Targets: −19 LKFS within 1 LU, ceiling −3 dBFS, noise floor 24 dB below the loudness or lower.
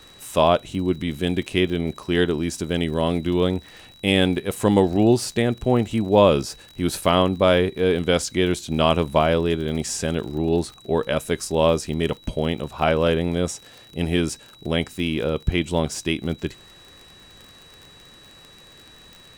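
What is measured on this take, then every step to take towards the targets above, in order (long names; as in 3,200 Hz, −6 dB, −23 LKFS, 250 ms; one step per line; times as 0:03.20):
crackle rate 53 per second; interfering tone 3,900 Hz; level of the tone −48 dBFS; integrated loudness −22.0 LKFS; sample peak −2.0 dBFS; target loudness −19.0 LKFS
→ click removal
notch filter 3,900 Hz, Q 30
level +3 dB
brickwall limiter −3 dBFS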